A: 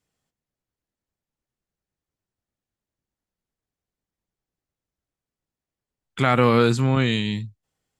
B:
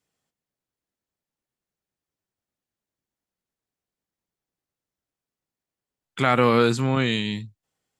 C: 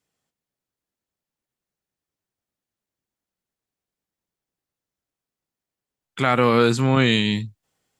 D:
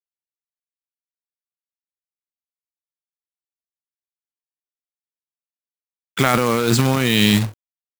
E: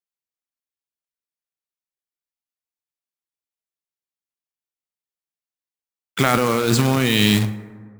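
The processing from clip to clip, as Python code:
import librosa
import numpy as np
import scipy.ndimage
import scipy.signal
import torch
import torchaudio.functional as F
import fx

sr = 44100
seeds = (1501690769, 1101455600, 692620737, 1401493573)

y1 = fx.low_shelf(x, sr, hz=100.0, db=-11.0)
y2 = fx.rider(y1, sr, range_db=10, speed_s=0.5)
y2 = y2 * 10.0 ** (3.5 / 20.0)
y3 = fx.over_compress(y2, sr, threshold_db=-22.0, ratio=-1.0)
y3 = fx.quant_companded(y3, sr, bits=4)
y3 = y3 * 10.0 ** (5.0 / 20.0)
y4 = fx.rev_plate(y3, sr, seeds[0], rt60_s=1.8, hf_ratio=0.35, predelay_ms=0, drr_db=12.5)
y4 = y4 * 10.0 ** (-1.0 / 20.0)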